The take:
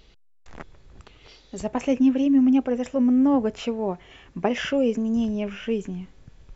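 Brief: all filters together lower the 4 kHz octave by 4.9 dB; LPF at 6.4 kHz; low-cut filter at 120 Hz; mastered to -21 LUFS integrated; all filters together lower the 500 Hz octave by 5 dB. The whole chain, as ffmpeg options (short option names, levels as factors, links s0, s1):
-af "highpass=120,lowpass=6400,equalizer=f=500:t=o:g=-5.5,equalizer=f=4000:t=o:g=-7.5,volume=1.5"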